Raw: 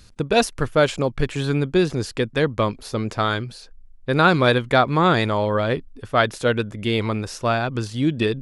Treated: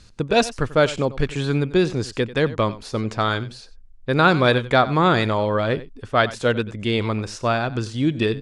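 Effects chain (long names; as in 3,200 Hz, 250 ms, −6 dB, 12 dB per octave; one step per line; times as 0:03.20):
low-pass filter 9,000 Hz 24 dB per octave
single-tap delay 92 ms −17 dB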